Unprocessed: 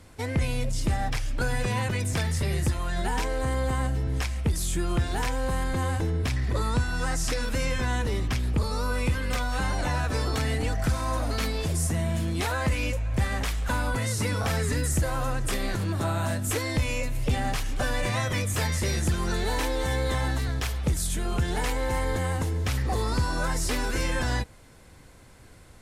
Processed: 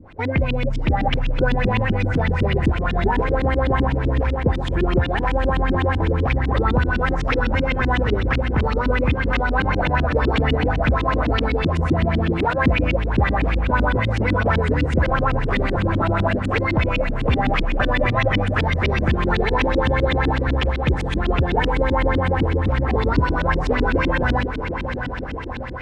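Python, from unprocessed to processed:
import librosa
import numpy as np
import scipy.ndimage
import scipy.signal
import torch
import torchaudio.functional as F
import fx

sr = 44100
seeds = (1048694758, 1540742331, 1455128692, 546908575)

y = fx.echo_diffused(x, sr, ms=732, feedback_pct=63, wet_db=-8)
y = fx.filter_lfo_lowpass(y, sr, shape='saw_up', hz=7.9, low_hz=220.0, high_hz=3500.0, q=3.9)
y = F.gain(torch.from_numpy(y), 5.0).numpy()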